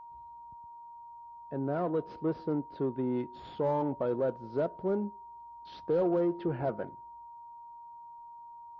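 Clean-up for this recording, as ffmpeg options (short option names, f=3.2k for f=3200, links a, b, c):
-af "bandreject=f=940:w=30"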